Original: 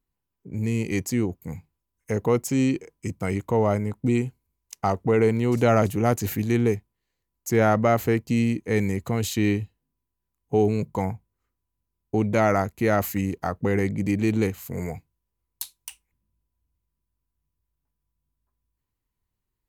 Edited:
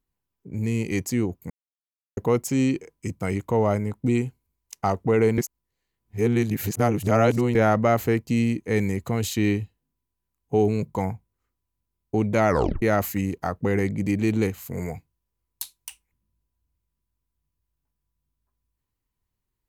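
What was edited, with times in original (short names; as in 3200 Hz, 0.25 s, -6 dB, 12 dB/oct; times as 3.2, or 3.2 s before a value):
1.5–2.17 mute
5.38–7.55 reverse
12.49 tape stop 0.33 s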